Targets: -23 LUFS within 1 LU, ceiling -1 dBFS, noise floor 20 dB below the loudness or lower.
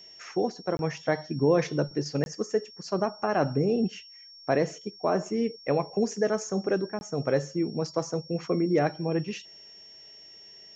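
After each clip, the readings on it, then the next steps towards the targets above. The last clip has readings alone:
dropouts 3; longest dropout 21 ms; steady tone 5.5 kHz; tone level -47 dBFS; loudness -28.5 LUFS; peak level -11.0 dBFS; loudness target -23.0 LUFS
-> interpolate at 0.77/2.24/6.99 s, 21 ms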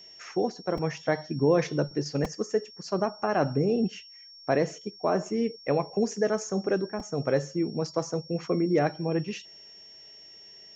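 dropouts 0; steady tone 5.5 kHz; tone level -47 dBFS
-> band-stop 5.5 kHz, Q 30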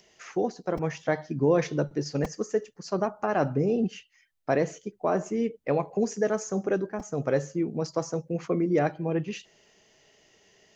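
steady tone not found; loudness -28.5 LUFS; peak level -11.5 dBFS; loudness target -23.0 LUFS
-> trim +5.5 dB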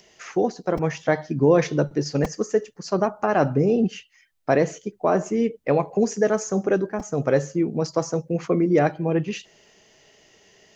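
loudness -23.0 LUFS; peak level -6.0 dBFS; noise floor -59 dBFS

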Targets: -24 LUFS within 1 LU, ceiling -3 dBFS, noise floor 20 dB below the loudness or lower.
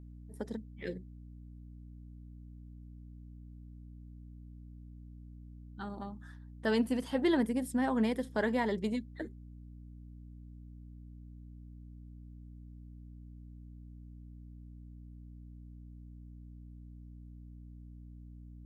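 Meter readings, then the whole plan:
hum 60 Hz; highest harmonic 300 Hz; hum level -47 dBFS; loudness -34.0 LUFS; peak level -19.0 dBFS; loudness target -24.0 LUFS
-> hum notches 60/120/180/240/300 Hz; trim +10 dB

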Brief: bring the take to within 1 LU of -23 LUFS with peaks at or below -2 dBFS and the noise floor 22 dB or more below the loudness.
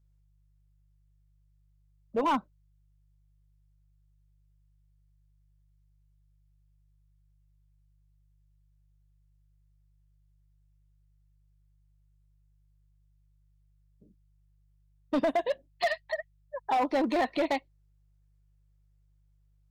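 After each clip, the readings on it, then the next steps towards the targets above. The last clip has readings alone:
clipped samples 0.8%; clipping level -22.0 dBFS; hum 50 Hz; highest harmonic 150 Hz; hum level -64 dBFS; loudness -30.5 LUFS; peak level -22.0 dBFS; loudness target -23.0 LUFS
-> clip repair -22 dBFS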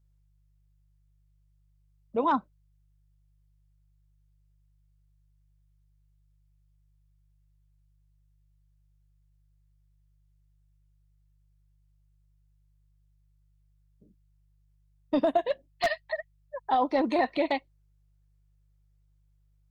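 clipped samples 0.0%; hum 50 Hz; highest harmonic 150 Hz; hum level -63 dBFS
-> de-hum 50 Hz, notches 3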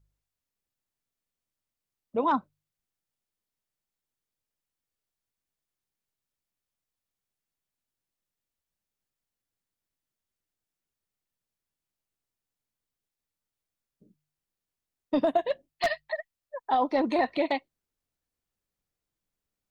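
hum not found; loudness -28.5 LUFS; peak level -13.0 dBFS; loudness target -23.0 LUFS
-> trim +5.5 dB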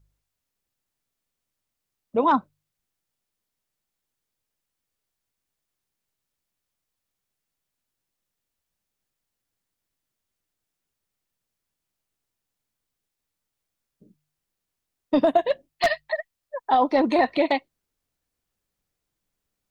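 loudness -23.0 LUFS; peak level -7.5 dBFS; noise floor -84 dBFS

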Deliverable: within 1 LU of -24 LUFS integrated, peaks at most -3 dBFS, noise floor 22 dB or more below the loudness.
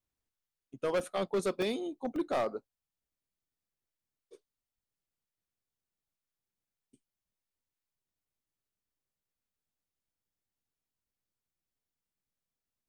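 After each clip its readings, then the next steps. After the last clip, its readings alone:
clipped samples 0.5%; clipping level -25.5 dBFS; dropouts 3; longest dropout 1.7 ms; loudness -34.0 LUFS; peak level -25.5 dBFS; loudness target -24.0 LUFS
-> clip repair -25.5 dBFS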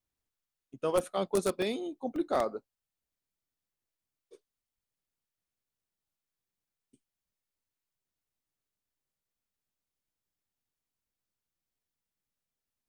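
clipped samples 0.0%; dropouts 3; longest dropout 1.7 ms
-> interpolate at 1.00/1.62/2.16 s, 1.7 ms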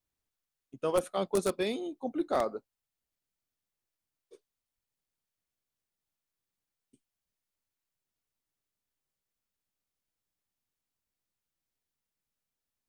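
dropouts 0; loudness -32.0 LUFS; peak level -16.5 dBFS; loudness target -24.0 LUFS
-> trim +8 dB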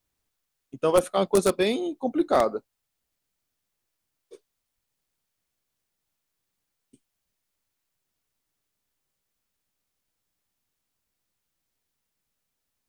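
loudness -24.0 LUFS; peak level -8.5 dBFS; noise floor -81 dBFS

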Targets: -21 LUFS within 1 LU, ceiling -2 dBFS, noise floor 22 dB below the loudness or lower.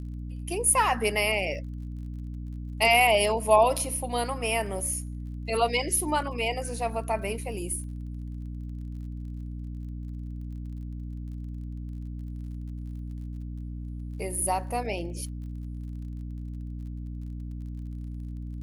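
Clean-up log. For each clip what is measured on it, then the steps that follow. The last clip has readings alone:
tick rate 35 per s; hum 60 Hz; highest harmonic 300 Hz; hum level -33 dBFS; loudness -29.5 LUFS; peak level -7.5 dBFS; loudness target -21.0 LUFS
-> de-click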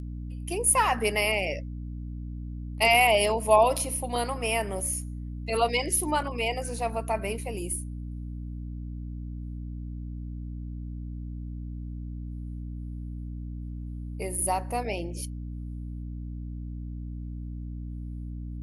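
tick rate 0.16 per s; hum 60 Hz; highest harmonic 300 Hz; hum level -33 dBFS
-> de-hum 60 Hz, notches 5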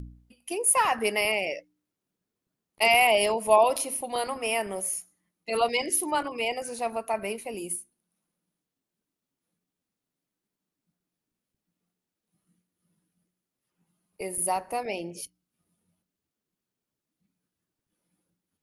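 hum not found; loudness -26.0 LUFS; peak level -8.0 dBFS; loudness target -21.0 LUFS
-> trim +5 dB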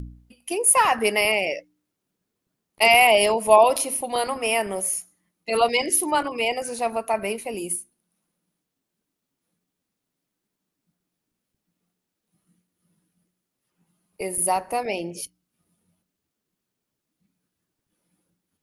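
loudness -21.0 LUFS; peak level -3.0 dBFS; noise floor -82 dBFS

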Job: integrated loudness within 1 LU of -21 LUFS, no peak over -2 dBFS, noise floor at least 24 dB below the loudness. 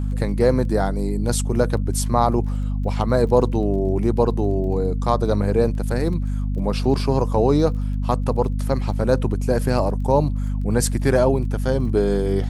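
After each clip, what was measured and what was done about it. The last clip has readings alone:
tick rate 22 per s; hum 50 Hz; highest harmonic 250 Hz; hum level -20 dBFS; loudness -21.0 LUFS; peak level -3.0 dBFS; loudness target -21.0 LUFS
-> de-click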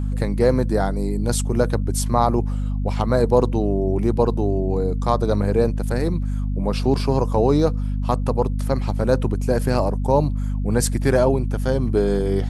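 tick rate 0 per s; hum 50 Hz; highest harmonic 250 Hz; hum level -20 dBFS
-> de-hum 50 Hz, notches 5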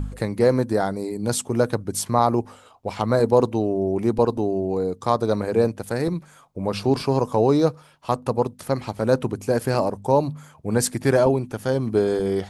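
hum not found; loudness -22.5 LUFS; peak level -4.0 dBFS; loudness target -21.0 LUFS
-> trim +1.5 dB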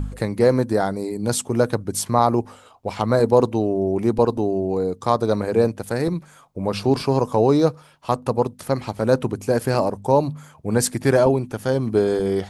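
loudness -21.0 LUFS; peak level -2.5 dBFS; noise floor -50 dBFS

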